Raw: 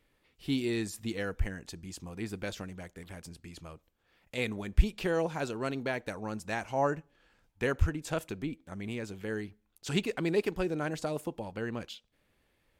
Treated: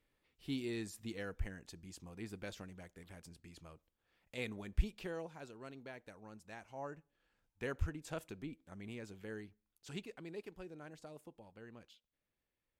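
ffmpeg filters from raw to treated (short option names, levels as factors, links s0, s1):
-af "volume=0.794,afade=t=out:st=4.74:d=0.58:silence=0.398107,afade=t=in:st=6.86:d=0.9:silence=0.446684,afade=t=out:st=9.2:d=1.04:silence=0.375837"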